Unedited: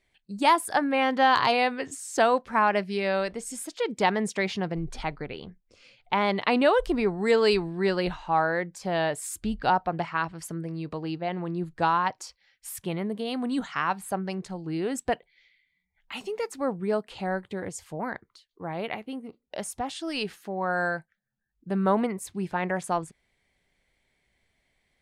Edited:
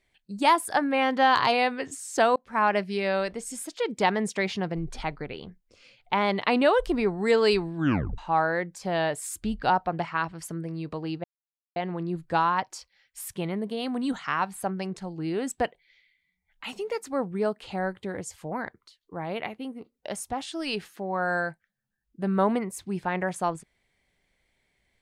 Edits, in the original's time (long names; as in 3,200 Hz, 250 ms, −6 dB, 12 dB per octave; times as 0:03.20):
0:02.36–0:02.65: fade in
0:07.75: tape stop 0.43 s
0:11.24: splice in silence 0.52 s